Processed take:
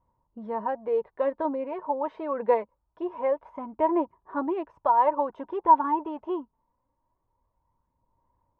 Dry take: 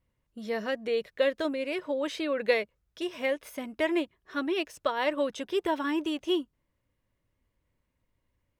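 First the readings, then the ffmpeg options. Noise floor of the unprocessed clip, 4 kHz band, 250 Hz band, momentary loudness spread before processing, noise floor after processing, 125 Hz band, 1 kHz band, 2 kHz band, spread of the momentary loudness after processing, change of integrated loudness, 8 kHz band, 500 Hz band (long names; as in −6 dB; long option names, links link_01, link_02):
−79 dBFS, below −20 dB, −0.5 dB, 8 LU, −78 dBFS, can't be measured, +12.5 dB, −11.0 dB, 13 LU, +3.0 dB, below −30 dB, +1.5 dB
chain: -af "aphaser=in_gain=1:out_gain=1:delay=4.7:decay=0.37:speed=0.24:type=sinusoidal,lowpass=frequency=940:width_type=q:width=9.1,volume=-2.5dB"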